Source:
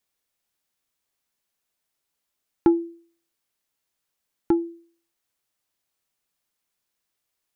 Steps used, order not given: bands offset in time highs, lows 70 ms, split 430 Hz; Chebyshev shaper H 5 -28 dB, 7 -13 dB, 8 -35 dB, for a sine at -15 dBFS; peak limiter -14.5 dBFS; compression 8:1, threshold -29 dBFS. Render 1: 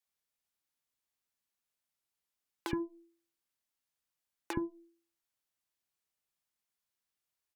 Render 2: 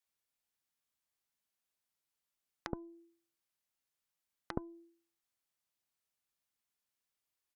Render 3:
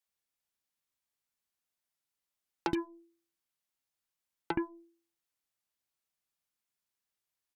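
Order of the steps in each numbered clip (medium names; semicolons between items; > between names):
Chebyshev shaper > peak limiter > compression > bands offset in time; compression > peak limiter > bands offset in time > Chebyshev shaper; bands offset in time > Chebyshev shaper > compression > peak limiter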